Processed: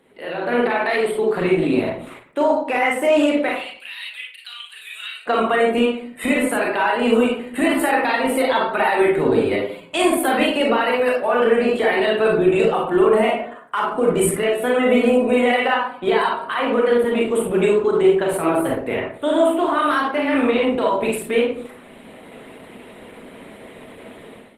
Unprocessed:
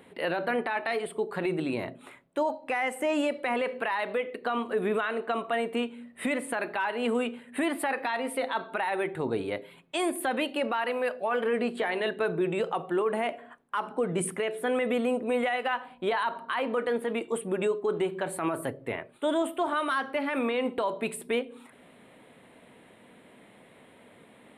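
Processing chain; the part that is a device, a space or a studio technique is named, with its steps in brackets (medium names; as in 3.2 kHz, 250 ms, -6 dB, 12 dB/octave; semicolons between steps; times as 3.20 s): 3.49–5.27 s: Chebyshev high-pass 2.9 kHz, order 3; bass shelf 96 Hz -4.5 dB; far-field microphone of a smart speaker (reverberation RT60 0.55 s, pre-delay 32 ms, DRR -2 dB; high-pass 94 Hz 12 dB/octave; level rider gain up to 15.5 dB; trim -4 dB; Opus 16 kbps 48 kHz)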